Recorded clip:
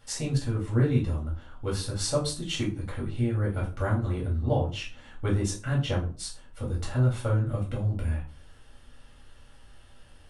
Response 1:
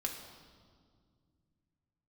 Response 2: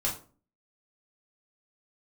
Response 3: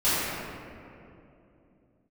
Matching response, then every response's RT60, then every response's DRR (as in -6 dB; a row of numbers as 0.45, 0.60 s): 2; 2.0, 0.40, 2.8 s; 0.5, -4.5, -16.5 dB